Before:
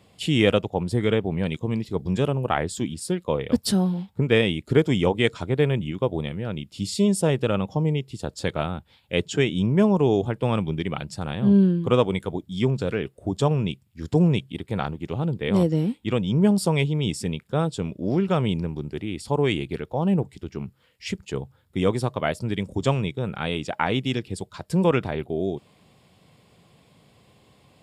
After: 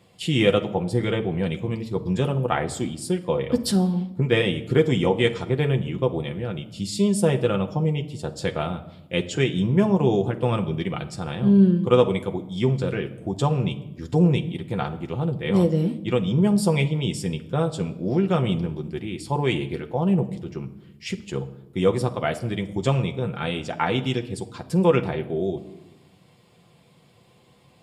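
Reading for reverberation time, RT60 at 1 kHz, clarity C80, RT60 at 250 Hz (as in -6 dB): 0.95 s, 0.85 s, 17.5 dB, 1.4 s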